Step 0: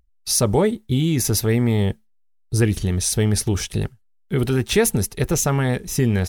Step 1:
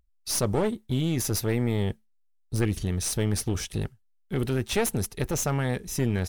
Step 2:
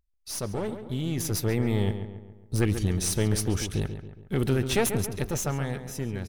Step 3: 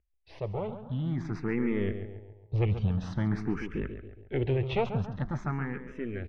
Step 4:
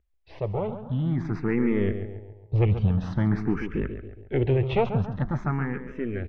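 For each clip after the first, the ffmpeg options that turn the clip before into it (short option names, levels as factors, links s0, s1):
-af "aeval=exprs='clip(val(0),-1,0.0794)':c=same,volume=0.501"
-filter_complex "[0:a]dynaudnorm=f=200:g=13:m=2.99,asplit=2[s0][s1];[s1]adelay=138,lowpass=f=2600:p=1,volume=0.355,asplit=2[s2][s3];[s3]adelay=138,lowpass=f=2600:p=1,volume=0.49,asplit=2[s4][s5];[s5]adelay=138,lowpass=f=2600:p=1,volume=0.49,asplit=2[s6][s7];[s7]adelay=138,lowpass=f=2600:p=1,volume=0.49,asplit=2[s8][s9];[s9]adelay=138,lowpass=f=2600:p=1,volume=0.49,asplit=2[s10][s11];[s11]adelay=138,lowpass=f=2600:p=1,volume=0.49[s12];[s0][s2][s4][s6][s8][s10][s12]amix=inputs=7:normalize=0,volume=0.447"
-filter_complex "[0:a]lowpass=f=2500:w=0.5412,lowpass=f=2500:w=1.3066,crystalizer=i=1.5:c=0,asplit=2[s0][s1];[s1]afreqshift=0.48[s2];[s0][s2]amix=inputs=2:normalize=1"
-af "lowpass=f=2600:p=1,volume=1.88"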